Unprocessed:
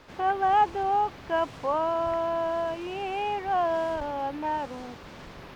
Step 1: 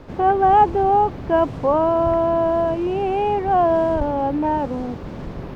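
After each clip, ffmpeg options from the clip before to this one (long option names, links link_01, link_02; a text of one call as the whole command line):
ffmpeg -i in.wav -af "tiltshelf=frequency=840:gain=9,volume=7.5dB" out.wav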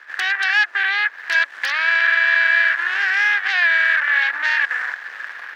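ffmpeg -i in.wav -af "acompressor=threshold=-22dB:ratio=8,aeval=exprs='0.168*(cos(1*acos(clip(val(0)/0.168,-1,1)))-cos(1*PI/2))+0.0299*(cos(6*acos(clip(val(0)/0.168,-1,1)))-cos(6*PI/2))+0.0422*(cos(7*acos(clip(val(0)/0.168,-1,1)))-cos(7*PI/2))+0.0531*(cos(8*acos(clip(val(0)/0.168,-1,1)))-cos(8*PI/2))':channel_layout=same,highpass=frequency=1700:width_type=q:width=9.7" out.wav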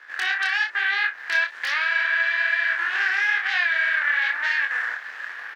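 ffmpeg -i in.wav -filter_complex "[0:a]alimiter=limit=-11dB:level=0:latency=1:release=89,flanger=delay=20:depth=7.5:speed=1.1,asplit=2[link_01][link_02];[link_02]adelay=35,volume=-9dB[link_03];[link_01][link_03]amix=inputs=2:normalize=0" out.wav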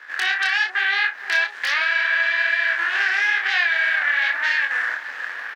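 ffmpeg -i in.wav -filter_complex "[0:a]acrossover=split=900|1900[link_01][link_02][link_03];[link_01]aecho=1:1:466:0.447[link_04];[link_02]alimiter=limit=-24dB:level=0:latency=1:release=459[link_05];[link_04][link_05][link_03]amix=inputs=3:normalize=0,volume=4.5dB" out.wav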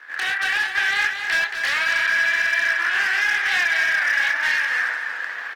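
ffmpeg -i in.wav -filter_complex "[0:a]asoftclip=type=hard:threshold=-16.5dB,asplit=2[link_01][link_02];[link_02]aecho=0:1:226|452|678:0.422|0.105|0.0264[link_03];[link_01][link_03]amix=inputs=2:normalize=0" -ar 48000 -c:a libopus -b:a 24k out.opus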